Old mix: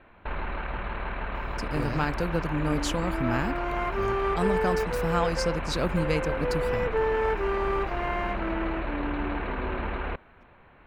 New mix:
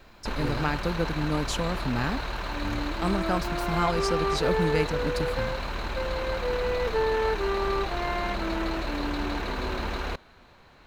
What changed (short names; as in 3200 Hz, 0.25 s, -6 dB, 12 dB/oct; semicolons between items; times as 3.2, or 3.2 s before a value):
speech: entry -1.35 s; first sound: remove inverse Chebyshev low-pass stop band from 5300 Hz, stop band 40 dB